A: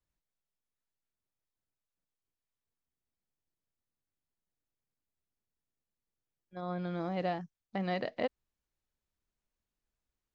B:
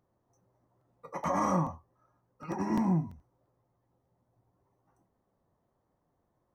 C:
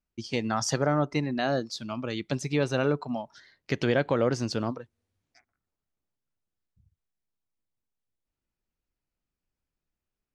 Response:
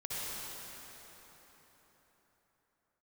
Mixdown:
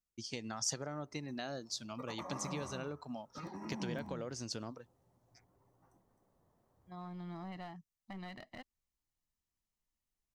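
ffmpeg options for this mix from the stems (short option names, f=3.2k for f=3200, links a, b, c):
-filter_complex "[0:a]aecho=1:1:1:0.85,aeval=exprs='clip(val(0),-1,0.0178)':c=same,adelay=350,volume=-8.5dB[a];[1:a]acompressor=threshold=-41dB:ratio=2,adelay=950,volume=1.5dB,asplit=2[b][c];[c]volume=-13.5dB[d];[2:a]acompressor=threshold=-28dB:ratio=6,equalizer=f=6.5k:w=1.2:g=6.5,volume=-10.5dB[e];[a][b]amix=inputs=2:normalize=0,highshelf=f=4.5k:g=-6.5,alimiter=level_in=13dB:limit=-24dB:level=0:latency=1:release=438,volume=-13dB,volume=0dB[f];[d]aecho=0:1:262:1[g];[e][f][g]amix=inputs=3:normalize=0,highshelf=f=5.9k:g=8"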